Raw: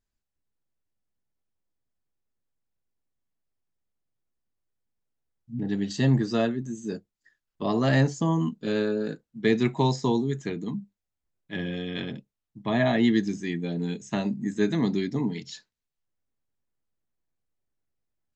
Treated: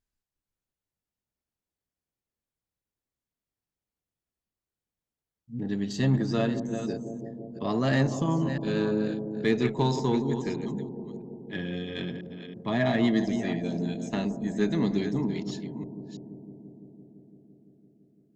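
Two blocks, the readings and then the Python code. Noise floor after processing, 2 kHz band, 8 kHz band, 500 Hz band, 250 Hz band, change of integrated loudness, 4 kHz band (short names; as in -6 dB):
under -85 dBFS, -2.0 dB, n/a, -1.0 dB, -1.0 dB, -2.0 dB, -2.0 dB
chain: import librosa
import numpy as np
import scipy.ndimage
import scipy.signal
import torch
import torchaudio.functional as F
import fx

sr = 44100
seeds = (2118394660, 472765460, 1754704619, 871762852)

y = fx.reverse_delay(x, sr, ms=330, wet_db=-10)
y = fx.cheby_harmonics(y, sr, harmonics=(8,), levels_db=(-32,), full_scale_db=-9.5)
y = fx.echo_bbd(y, sr, ms=169, stages=1024, feedback_pct=82, wet_db=-11.5)
y = y * librosa.db_to_amplitude(-2.5)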